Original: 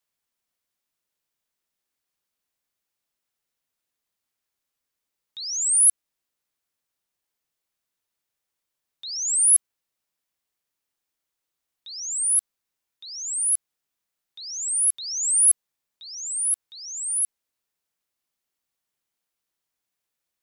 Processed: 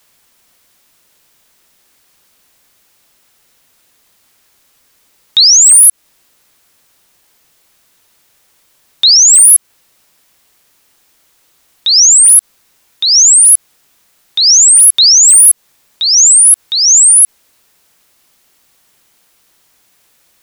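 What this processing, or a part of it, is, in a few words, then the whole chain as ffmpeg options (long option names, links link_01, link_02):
loud club master: -af "acompressor=threshold=-21dB:ratio=2.5,asoftclip=type=hard:threshold=-21.5dB,alimiter=level_in=30.5dB:limit=-1dB:release=50:level=0:latency=1,volume=-1dB"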